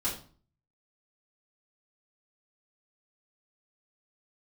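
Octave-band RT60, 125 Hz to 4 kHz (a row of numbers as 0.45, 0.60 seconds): 0.65, 0.55, 0.45, 0.40, 0.35, 0.35 seconds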